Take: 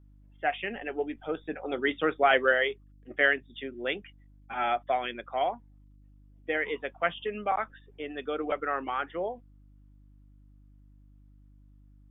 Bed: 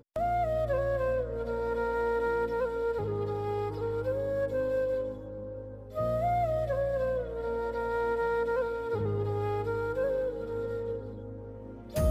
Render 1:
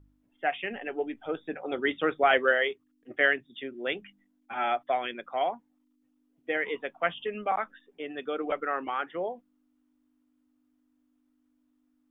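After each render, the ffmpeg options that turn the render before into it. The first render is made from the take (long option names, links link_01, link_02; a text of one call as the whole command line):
ffmpeg -i in.wav -af "bandreject=frequency=50:width_type=h:width=4,bandreject=frequency=100:width_type=h:width=4,bandreject=frequency=150:width_type=h:width=4,bandreject=frequency=200:width_type=h:width=4" out.wav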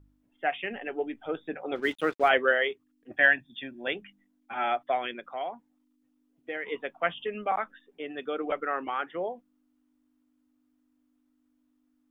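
ffmpeg -i in.wav -filter_complex "[0:a]asplit=3[link_01][link_02][link_03];[link_01]afade=type=out:start_time=1.75:duration=0.02[link_04];[link_02]aeval=exprs='sgn(val(0))*max(abs(val(0))-0.00501,0)':channel_layout=same,afade=type=in:start_time=1.75:duration=0.02,afade=type=out:start_time=2.28:duration=0.02[link_05];[link_03]afade=type=in:start_time=2.28:duration=0.02[link_06];[link_04][link_05][link_06]amix=inputs=3:normalize=0,asettb=1/sr,asplit=3[link_07][link_08][link_09];[link_07]atrim=end=3.114[link_10];[link_08]atrim=start=3.11:end=3.88,asetpts=PTS-STARTPTS,afade=type=in:duration=0.004:curve=qsin,afade=type=out:start_time=0.766:duration=0.004:curve=qsin,aecho=1:1:1.2:0.78,atrim=end_sample=33957[link_11];[link_09]atrim=start=3.876[link_12];[link_10][link_11]acrossfade=duration=0.004:curve1=hsin:curve2=qsin[link_13];[link_13][link_12]acrossfade=duration=0.004:curve1=qsin:curve2=hsin,asettb=1/sr,asplit=3[link_14][link_15][link_16];[link_14]atrim=end=5.194[link_17];[link_15]atrim=start=5.19:end=6.72,asetpts=PTS-STARTPTS,afade=type=in:duration=0.004:curve=qsin,afade=type=out:start_time=1.526:duration=0.004:curve=qsin,acompressor=threshold=-40dB:ratio=1.5:attack=3.2:release=140:knee=1:detection=peak[link_18];[link_16]atrim=start=6.716[link_19];[link_17][link_18]acrossfade=duration=0.004:curve1=hsin:curve2=qsin[link_20];[link_20][link_19]acrossfade=duration=0.004:curve1=qsin:curve2=hsin" out.wav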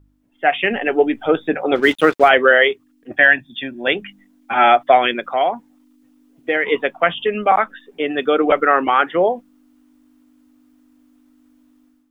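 ffmpeg -i in.wav -af "dynaudnorm=framelen=320:gausssize=3:maxgain=12dB,alimiter=level_in=5dB:limit=-1dB:release=50:level=0:latency=1" out.wav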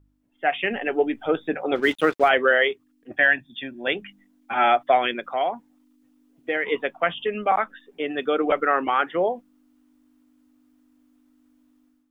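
ffmpeg -i in.wav -af "volume=-6.5dB" out.wav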